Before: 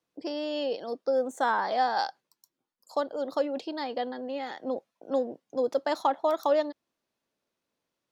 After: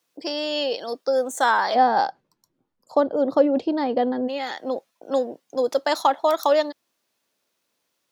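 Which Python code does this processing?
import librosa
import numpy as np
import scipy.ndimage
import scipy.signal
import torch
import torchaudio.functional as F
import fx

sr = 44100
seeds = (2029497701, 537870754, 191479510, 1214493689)

y = fx.tilt_eq(x, sr, slope=fx.steps((0.0, 2.5), (1.74, -3.5), (4.27, 2.0)))
y = F.gain(torch.from_numpy(y), 7.0).numpy()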